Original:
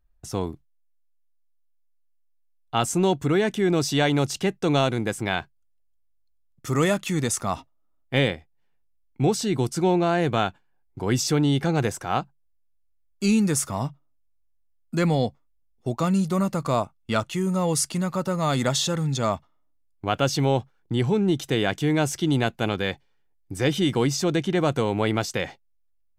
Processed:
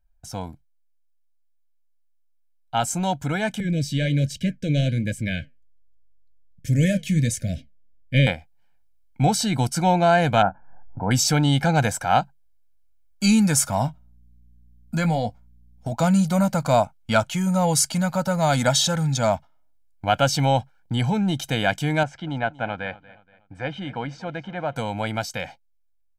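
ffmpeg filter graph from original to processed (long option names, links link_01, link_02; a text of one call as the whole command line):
ffmpeg -i in.wav -filter_complex "[0:a]asettb=1/sr,asplit=3[link_01][link_02][link_03];[link_01]atrim=end=3.604[link_04];[link_02]atrim=start=3.6:end=8.27,asetpts=PTS-STARTPTS,afade=type=in:duration=0.004:curve=qsin,afade=type=out:start_time=4.666:duration=0.004:curve=qsin,flanger=delay=1.9:depth=8.6:regen=-75:speed=1.3:shape=triangular,asuperstop=centerf=1000:order=12:qfactor=0.93,bass=frequency=250:gain=9,treble=frequency=4000:gain=-4[link_05];[link_03]atrim=start=8.266[link_06];[link_04][link_05]acrossfade=duration=0.004:curve1=hsin:curve2=qsin[link_07];[link_07][link_06]acrossfade=duration=0.004:curve1=qsin:curve2=hsin,asettb=1/sr,asplit=3[link_08][link_09][link_10];[link_08]atrim=end=10.424[link_11];[link_09]atrim=start=10.42:end=11.11,asetpts=PTS-STARTPTS,afade=type=in:duration=0.004:curve=qsin,afade=type=out:start_time=0.686:duration=0.004:curve=qsin,lowpass=frequency=1300:width=0.5412,lowpass=frequency=1300:width=1.3066,acompressor=mode=upward:threshold=-34dB:ratio=2.5:attack=3.2:release=140:knee=2.83:detection=peak,asplit=2[link_12][link_13];[link_13]adelay=26,volume=-12dB[link_14];[link_12][link_14]amix=inputs=2:normalize=0,atrim=end_sample=30429[link_15];[link_10]atrim=start=11.106[link_16];[link_11][link_15]acrossfade=duration=0.004:curve1=hsin:curve2=qsin[link_17];[link_17][link_16]acrossfade=duration=0.004:curve1=qsin:curve2=hsin,asettb=1/sr,asplit=3[link_18][link_19][link_20];[link_18]atrim=end=13.864[link_21];[link_19]atrim=start=13.86:end=15.92,asetpts=PTS-STARTPTS,afade=type=in:duration=0.004:curve=qsin,afade=type=out:start_time=2.056:duration=0.004:curve=qsin,acompressor=threshold=-25dB:ratio=2.5:attack=3.2:release=140:knee=1:detection=peak,aeval=exprs='val(0)+0.000891*(sin(2*PI*60*n/s)+sin(2*PI*2*60*n/s)/2+sin(2*PI*3*60*n/s)/3+sin(2*PI*4*60*n/s)/4+sin(2*PI*5*60*n/s)/5)':channel_layout=same,asplit=2[link_22][link_23];[link_23]adelay=18,volume=-10dB[link_24];[link_22][link_24]amix=inputs=2:normalize=0,atrim=end_sample=90846[link_25];[link_20]atrim=start=15.916[link_26];[link_21][link_25]acrossfade=duration=0.004:curve1=hsin:curve2=qsin[link_27];[link_27][link_26]acrossfade=duration=0.004:curve1=qsin:curve2=hsin,asettb=1/sr,asplit=3[link_28][link_29][link_30];[link_28]atrim=end=22.034[link_31];[link_29]atrim=start=22.03:end=24.76,asetpts=PTS-STARTPTS,afade=type=in:duration=0.004:curve=qsin,afade=type=out:start_time=2.726:duration=0.004:curve=qsin,lowpass=1900,lowshelf=frequency=360:gain=-7.5,aecho=1:1:237|474|711:0.112|0.046|0.0189,atrim=end_sample=120393[link_32];[link_30]atrim=start=24.756[link_33];[link_31][link_32]acrossfade=duration=0.004:curve1=hsin:curve2=qsin[link_34];[link_34][link_33]acrossfade=duration=0.004:curve1=qsin:curve2=hsin,equalizer=frequency=98:width_type=o:width=2.1:gain=-4,aecho=1:1:1.3:0.85,dynaudnorm=framelen=500:gausssize=17:maxgain=11.5dB,volume=-3.5dB" out.wav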